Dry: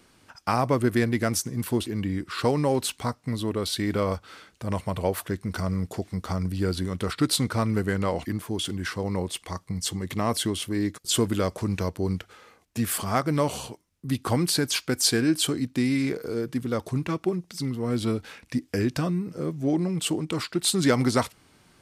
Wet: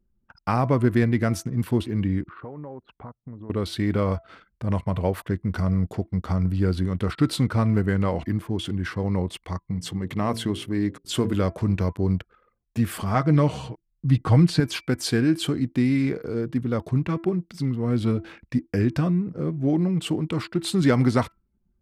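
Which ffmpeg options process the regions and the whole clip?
ffmpeg -i in.wav -filter_complex "[0:a]asettb=1/sr,asplit=3[link_01][link_02][link_03];[link_01]atrim=end=2.294[link_04];[link_02]atrim=start=2.29:end=3.5,asetpts=PTS-STARTPTS,afade=type=in:duration=0.004:curve=qsin,afade=type=out:start_time=1.206:duration=0.004:curve=qsin,lowpass=1200,lowshelf=frequency=330:gain=-9,acompressor=threshold=-41dB:ratio=2.5:attack=3.2:release=140:knee=1:detection=peak[link_05];[link_03]atrim=start=3.496[link_06];[link_04][link_05]acrossfade=duration=0.004:curve1=hsin:curve2=qsin[link_07];[link_07][link_06]acrossfade=duration=0.004:curve1=qsin:curve2=hsin,asettb=1/sr,asplit=3[link_08][link_09][link_10];[link_08]atrim=end=9.674[link_11];[link_09]atrim=start=9.67:end=11.34,asetpts=PTS-STARTPTS,afade=type=in:duration=0.004:curve=qsin,afade=type=out:start_time=1.666:duration=0.004:curve=qsin,equalizer=frequency=63:width=0.94:gain=-6,bandreject=frequency=56.92:width_type=h:width=4,bandreject=frequency=113.84:width_type=h:width=4,bandreject=frequency=170.76:width_type=h:width=4,bandreject=frequency=227.68:width_type=h:width=4,bandreject=frequency=284.6:width_type=h:width=4,bandreject=frequency=341.52:width_type=h:width=4,bandreject=frequency=398.44:width_type=h:width=4,bandreject=frequency=455.36:width_type=h:width=4,bandreject=frequency=512.28:width_type=h:width=4[link_12];[link_10]atrim=start=11.336[link_13];[link_11][link_12]acrossfade=duration=0.004:curve1=hsin:curve2=qsin[link_14];[link_14][link_13]acrossfade=duration=0.004:curve1=qsin:curve2=hsin,asettb=1/sr,asplit=3[link_15][link_16][link_17];[link_15]atrim=end=13.144[link_18];[link_16]atrim=start=13.14:end=14.6,asetpts=PTS-STARTPTS,afade=type=in:duration=0.004:curve=qsin,afade=type=out:start_time=1.456:duration=0.004:curve=qsin,lowpass=8000,asubboost=boost=3.5:cutoff=200,aecho=1:1:6.4:0.47,atrim=end_sample=64386[link_19];[link_17]atrim=start=14.596[link_20];[link_18][link_19]acrossfade=duration=0.004:curve1=hsin:curve2=qsin[link_21];[link_21][link_20]acrossfade=duration=0.004:curve1=qsin:curve2=hsin,bandreject=frequency=333:width_type=h:width=4,bandreject=frequency=666:width_type=h:width=4,bandreject=frequency=999:width_type=h:width=4,bandreject=frequency=1332:width_type=h:width=4,bandreject=frequency=1665:width_type=h:width=4,bandreject=frequency=1998:width_type=h:width=4,bandreject=frequency=2331:width_type=h:width=4,anlmdn=0.0398,bass=frequency=250:gain=6,treble=frequency=4000:gain=-10" out.wav

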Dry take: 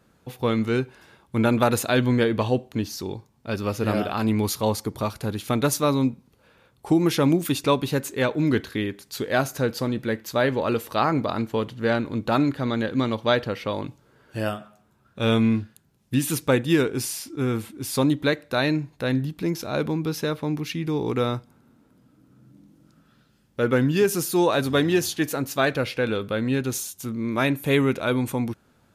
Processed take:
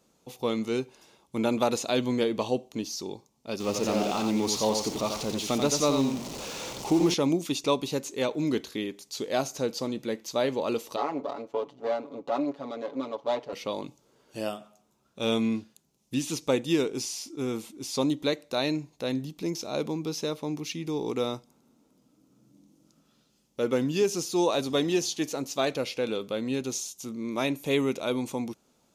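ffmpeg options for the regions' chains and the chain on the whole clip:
ffmpeg -i in.wav -filter_complex "[0:a]asettb=1/sr,asplit=3[link_01][link_02][link_03];[link_01]atrim=end=3.604[link_04];[link_02]atrim=start=3.6:end=7.14,asetpts=PTS-STARTPTS,afade=type=in:duration=0.004:curve=qsin,afade=type=out:start_time=3.536:duration=0.004:curve=qsin,aeval=exprs='val(0)+0.5*0.0447*sgn(val(0))':channel_layout=same,aecho=1:1:88:0.501,atrim=end_sample=156114[link_05];[link_03]atrim=start=7.136[link_06];[link_04][link_05]acrossfade=duration=0.004:curve1=hsin:curve2=qsin[link_07];[link_07][link_06]acrossfade=duration=0.004:curve1=qsin:curve2=hsin,asettb=1/sr,asplit=3[link_08][link_09][link_10];[link_08]atrim=end=10.964[link_11];[link_09]atrim=start=10.96:end=13.53,asetpts=PTS-STARTPTS,afade=type=in:duration=0.004:curve=qsin,afade=type=out:start_time=2.566:duration=0.004:curve=qsin,aeval=exprs='if(lt(val(0),0),0.251*val(0),val(0))':channel_layout=same,bandpass=frequency=640:width_type=q:width=0.66,aecho=1:1:7.1:0.88,atrim=end_sample=113337[link_12];[link_10]atrim=start=13.526[link_13];[link_11][link_12]acrossfade=duration=0.004:curve1=hsin:curve2=qsin[link_14];[link_14][link_13]acrossfade=duration=0.004:curve1=qsin:curve2=hsin,lowshelf=frequency=170:gain=-8.5,acrossover=split=6200[link_15][link_16];[link_16]acompressor=threshold=-45dB:ratio=4:attack=1:release=60[link_17];[link_15][link_17]amix=inputs=2:normalize=0,equalizer=frequency=100:width_type=o:width=0.67:gain=-10,equalizer=frequency=1600:width_type=o:width=0.67:gain=-12,equalizer=frequency=6300:width_type=o:width=0.67:gain=8,volume=-2.5dB" out.wav

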